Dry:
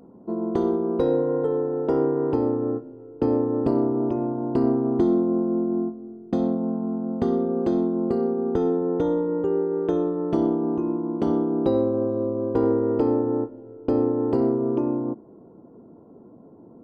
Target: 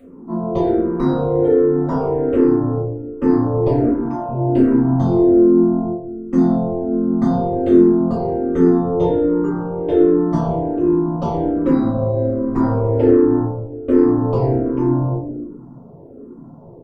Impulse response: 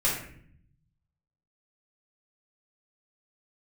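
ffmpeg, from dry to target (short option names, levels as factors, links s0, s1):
-filter_complex "[0:a]asoftclip=type=tanh:threshold=0.224,asettb=1/sr,asplit=3[s0][s1][s2];[s0]atrim=end=3.844[s3];[s1]atrim=start=3.84:end=4.29,asetpts=PTS-STARTPTS,afade=t=in:d=0.004:c=qsin,afade=t=out:st=0.446:d=0.004:c=qsin,highpass=500[s4];[s2]atrim=start=4.286[s5];[s3][s4]acrossfade=d=0.004:c1=hsin:c2=qsin[s6];[s6][s5]acrossfade=d=0.004:c1=qsin:c2=hsin,asplit=4[s7][s8][s9][s10];[s8]adelay=80,afreqshift=-84,volume=0.0631[s11];[s9]adelay=160,afreqshift=-168,volume=0.0292[s12];[s10]adelay=240,afreqshift=-252,volume=0.0133[s13];[s7][s11][s12][s13]amix=inputs=4:normalize=0[s14];[1:a]atrim=start_sample=2205[s15];[s14][s15]afir=irnorm=-1:irlink=0,asplit=2[s16][s17];[s17]afreqshift=-1.3[s18];[s16][s18]amix=inputs=2:normalize=1,volume=1.12"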